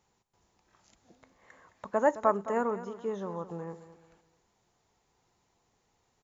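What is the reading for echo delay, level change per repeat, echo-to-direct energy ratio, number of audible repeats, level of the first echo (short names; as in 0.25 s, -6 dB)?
0.214 s, -9.5 dB, -13.5 dB, 3, -14.0 dB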